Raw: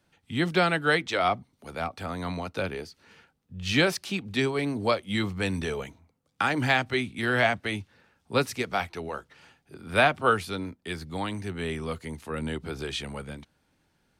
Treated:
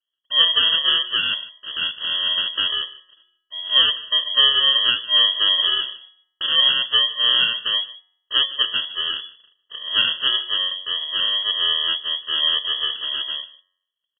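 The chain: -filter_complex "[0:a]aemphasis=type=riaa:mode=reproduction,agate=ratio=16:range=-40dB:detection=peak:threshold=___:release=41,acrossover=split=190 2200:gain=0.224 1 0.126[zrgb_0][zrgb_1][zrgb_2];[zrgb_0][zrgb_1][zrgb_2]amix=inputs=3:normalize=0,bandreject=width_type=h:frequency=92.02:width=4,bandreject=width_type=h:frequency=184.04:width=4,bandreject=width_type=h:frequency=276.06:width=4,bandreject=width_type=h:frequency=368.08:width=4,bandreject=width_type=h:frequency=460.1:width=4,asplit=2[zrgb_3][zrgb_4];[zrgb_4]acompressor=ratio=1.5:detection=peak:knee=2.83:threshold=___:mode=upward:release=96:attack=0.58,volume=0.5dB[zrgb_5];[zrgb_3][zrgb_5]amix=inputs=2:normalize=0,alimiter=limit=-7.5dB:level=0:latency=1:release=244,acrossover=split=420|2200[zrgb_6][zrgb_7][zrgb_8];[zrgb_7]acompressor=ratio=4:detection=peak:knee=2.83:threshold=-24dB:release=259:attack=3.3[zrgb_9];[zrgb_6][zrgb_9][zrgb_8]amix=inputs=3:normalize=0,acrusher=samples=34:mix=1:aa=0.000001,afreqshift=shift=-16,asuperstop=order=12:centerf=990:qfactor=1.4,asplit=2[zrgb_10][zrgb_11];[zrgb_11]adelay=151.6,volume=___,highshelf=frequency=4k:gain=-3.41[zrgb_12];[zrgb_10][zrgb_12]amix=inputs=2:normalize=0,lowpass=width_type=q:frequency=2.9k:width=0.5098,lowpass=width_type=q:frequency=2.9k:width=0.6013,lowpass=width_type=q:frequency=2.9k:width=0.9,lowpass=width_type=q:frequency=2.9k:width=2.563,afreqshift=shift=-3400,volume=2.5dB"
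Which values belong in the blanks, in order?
-53dB, -44dB, -19dB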